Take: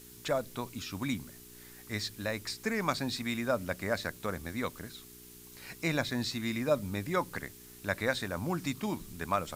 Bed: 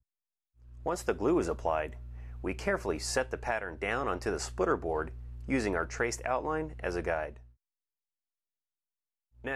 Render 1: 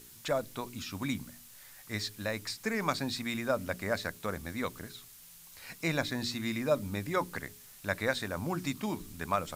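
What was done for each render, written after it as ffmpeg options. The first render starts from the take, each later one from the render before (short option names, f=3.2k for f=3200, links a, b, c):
-af "bandreject=f=60:t=h:w=4,bandreject=f=120:t=h:w=4,bandreject=f=180:t=h:w=4,bandreject=f=240:t=h:w=4,bandreject=f=300:t=h:w=4,bandreject=f=360:t=h:w=4,bandreject=f=420:t=h:w=4"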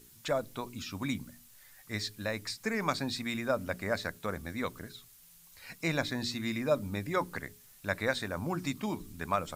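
-af "afftdn=nr=6:nf=-54"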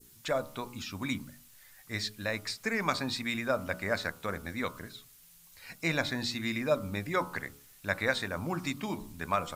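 -af "bandreject=f=71.01:t=h:w=4,bandreject=f=142.02:t=h:w=4,bandreject=f=213.03:t=h:w=4,bandreject=f=284.04:t=h:w=4,bandreject=f=355.05:t=h:w=4,bandreject=f=426.06:t=h:w=4,bandreject=f=497.07:t=h:w=4,bandreject=f=568.08:t=h:w=4,bandreject=f=639.09:t=h:w=4,bandreject=f=710.1:t=h:w=4,bandreject=f=781.11:t=h:w=4,bandreject=f=852.12:t=h:w=4,bandreject=f=923.13:t=h:w=4,bandreject=f=994.14:t=h:w=4,bandreject=f=1.06515k:t=h:w=4,bandreject=f=1.13616k:t=h:w=4,bandreject=f=1.20717k:t=h:w=4,bandreject=f=1.27818k:t=h:w=4,bandreject=f=1.34919k:t=h:w=4,bandreject=f=1.4202k:t=h:w=4,bandreject=f=1.49121k:t=h:w=4,adynamicequalizer=threshold=0.00708:dfrequency=2300:dqfactor=0.75:tfrequency=2300:tqfactor=0.75:attack=5:release=100:ratio=0.375:range=2:mode=boostabove:tftype=bell"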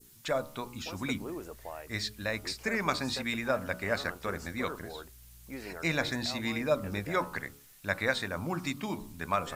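-filter_complex "[1:a]volume=-12.5dB[a];[0:a][a]amix=inputs=2:normalize=0"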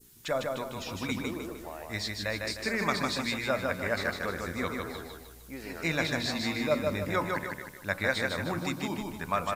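-af "aecho=1:1:153|306|459|612|765:0.668|0.281|0.118|0.0495|0.0208"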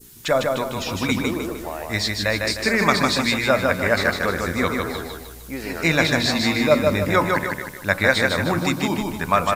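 -af "volume=11dB"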